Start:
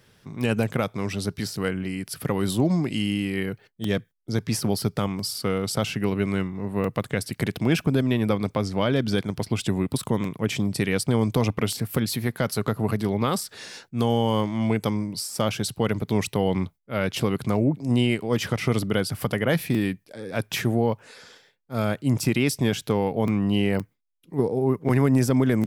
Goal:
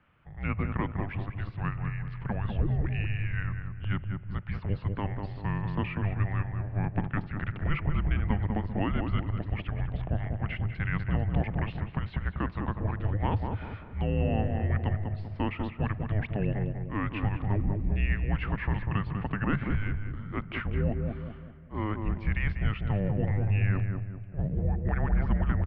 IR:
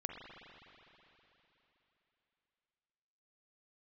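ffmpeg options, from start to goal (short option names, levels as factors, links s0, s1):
-filter_complex "[0:a]asplit=2[s0][s1];[1:a]atrim=start_sample=2205[s2];[s1][s2]afir=irnorm=-1:irlink=0,volume=0.158[s3];[s0][s3]amix=inputs=2:normalize=0,highpass=f=170:t=q:w=0.5412,highpass=f=170:t=q:w=1.307,lowpass=f=2900:t=q:w=0.5176,lowpass=f=2900:t=q:w=0.7071,lowpass=f=2900:t=q:w=1.932,afreqshift=-310,asplit=2[s4][s5];[s5]adelay=195,lowpass=f=1000:p=1,volume=0.668,asplit=2[s6][s7];[s7]adelay=195,lowpass=f=1000:p=1,volume=0.46,asplit=2[s8][s9];[s9]adelay=195,lowpass=f=1000:p=1,volume=0.46,asplit=2[s10][s11];[s11]adelay=195,lowpass=f=1000:p=1,volume=0.46,asplit=2[s12][s13];[s13]adelay=195,lowpass=f=1000:p=1,volume=0.46,asplit=2[s14][s15];[s15]adelay=195,lowpass=f=1000:p=1,volume=0.46[s16];[s4][s6][s8][s10][s12][s14][s16]amix=inputs=7:normalize=0,volume=0.531"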